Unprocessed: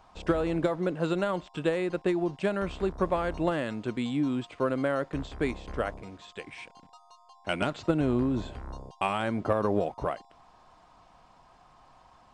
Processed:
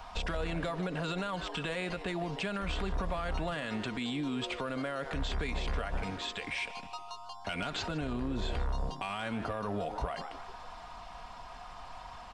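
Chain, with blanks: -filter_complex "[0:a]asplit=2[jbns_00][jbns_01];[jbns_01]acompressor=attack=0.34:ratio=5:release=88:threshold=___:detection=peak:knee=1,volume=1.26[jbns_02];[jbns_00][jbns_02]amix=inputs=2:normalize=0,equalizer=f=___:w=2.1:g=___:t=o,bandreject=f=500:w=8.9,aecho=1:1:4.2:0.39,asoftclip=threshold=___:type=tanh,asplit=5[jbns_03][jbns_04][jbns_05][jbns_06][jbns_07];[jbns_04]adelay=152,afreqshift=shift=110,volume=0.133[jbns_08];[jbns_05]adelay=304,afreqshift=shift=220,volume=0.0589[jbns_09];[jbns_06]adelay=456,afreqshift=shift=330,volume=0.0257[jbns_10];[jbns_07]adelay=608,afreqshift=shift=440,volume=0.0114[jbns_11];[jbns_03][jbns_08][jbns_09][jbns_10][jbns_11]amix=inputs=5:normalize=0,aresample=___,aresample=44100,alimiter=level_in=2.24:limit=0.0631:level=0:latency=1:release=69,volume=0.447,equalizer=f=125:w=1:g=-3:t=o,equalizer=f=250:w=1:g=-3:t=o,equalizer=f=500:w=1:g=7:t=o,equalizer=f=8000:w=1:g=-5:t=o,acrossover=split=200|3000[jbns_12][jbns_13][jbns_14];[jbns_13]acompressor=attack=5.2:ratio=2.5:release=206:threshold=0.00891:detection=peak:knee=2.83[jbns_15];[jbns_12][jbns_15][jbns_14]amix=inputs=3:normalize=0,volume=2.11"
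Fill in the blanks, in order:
0.0158, 390, -13, 0.119, 32000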